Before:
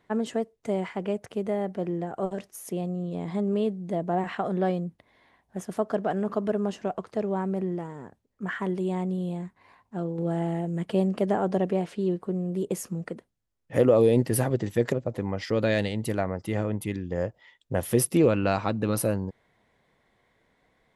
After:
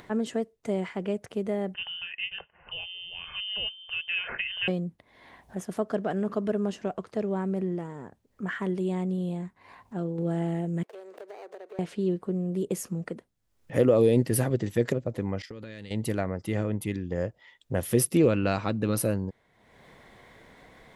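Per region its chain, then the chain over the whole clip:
0:01.74–0:04.68: spectral tilt +4.5 dB per octave + notch comb filter 1,000 Hz + voice inversion scrambler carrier 3,300 Hz
0:10.83–0:11.79: running median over 41 samples + Butterworth high-pass 380 Hz + downward compressor 3 to 1, threshold −46 dBFS
0:15.42–0:15.91: downward expander −31 dBFS + parametric band 700 Hz −10 dB 0.83 octaves + downward compressor 8 to 1, threshold −37 dBFS
whole clip: dynamic equaliser 850 Hz, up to −5 dB, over −41 dBFS, Q 1.4; upward compression, threshold −39 dBFS

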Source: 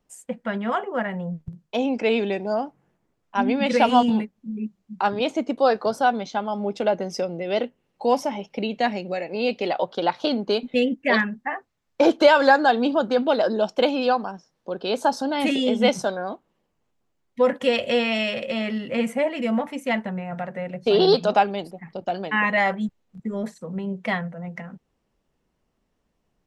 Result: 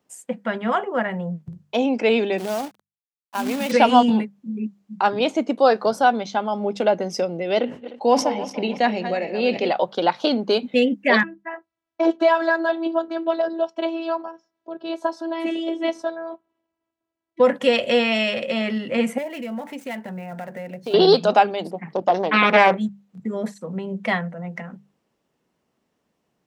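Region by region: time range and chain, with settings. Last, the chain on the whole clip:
0:02.38–0:03.72: downward compressor 2.5 to 1, threshold −26 dBFS + log-companded quantiser 4 bits
0:07.59–0:09.70: feedback delay that plays each chunk backwards 152 ms, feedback 52%, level −11 dB + high-frequency loss of the air 63 metres + level that may fall only so fast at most 140 dB per second
0:11.23–0:17.40: low-pass filter 1,300 Hz 6 dB per octave + parametric band 200 Hz −4 dB 2.8 octaves + phases set to zero 330 Hz
0:19.18–0:20.94: gap after every zero crossing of 0.052 ms + notch filter 1,200 Hz, Q 7.6 + downward compressor 2.5 to 1, threshold −34 dBFS
0:21.65–0:22.77: parametric band 410 Hz +7 dB 2.5 octaves + highs frequency-modulated by the lows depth 0.45 ms
whole clip: high-pass filter 130 Hz; mains-hum notches 50/100/150/200 Hz; level +3 dB

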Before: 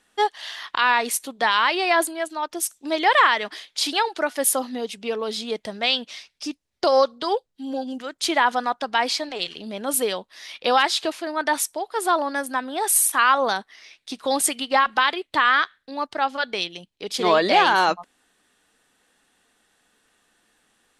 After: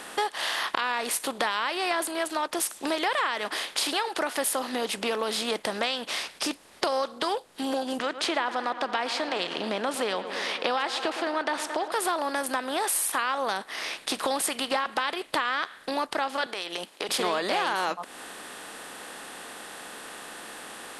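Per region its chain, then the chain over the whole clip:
0:07.99–0:11.92: high-pass filter 150 Hz 24 dB per octave + high-frequency loss of the air 130 metres + delay with a low-pass on its return 111 ms, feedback 62%, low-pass 2,900 Hz, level −21.5 dB
0:16.46–0:17.09: high-pass filter 390 Hz + downward compressor, threshold −40 dBFS
whole clip: compressor on every frequency bin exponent 0.6; downward compressor 4 to 1, threshold −26 dBFS

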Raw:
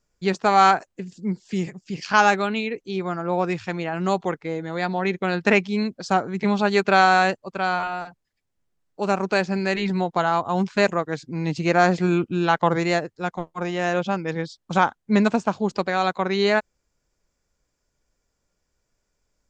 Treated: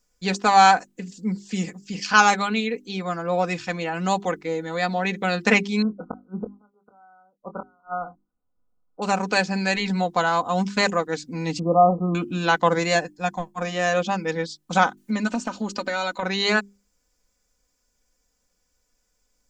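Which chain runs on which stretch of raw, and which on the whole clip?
0:05.82–0:09.02: gate with flip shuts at −14 dBFS, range −40 dB + linear-phase brick-wall low-pass 1,500 Hz + double-tracking delay 24 ms −9.5 dB
0:11.59–0:12.15: linear-phase brick-wall low-pass 1,300 Hz + double-tracking delay 24 ms −11.5 dB
0:12.95–0:13.62: notch filter 3,900 Hz, Q 13 + comb filter 1.2 ms, depth 46% + one half of a high-frequency compander decoder only
0:14.97–0:16.23: comb filter 3.3 ms, depth 63% + downward compressor 5 to 1, threshold −22 dBFS + one half of a high-frequency compander encoder only
whole clip: high-shelf EQ 5,200 Hz +11 dB; mains-hum notches 50/100/150/200/250/300/350/400 Hz; comb filter 4 ms, depth 61%; level −1 dB

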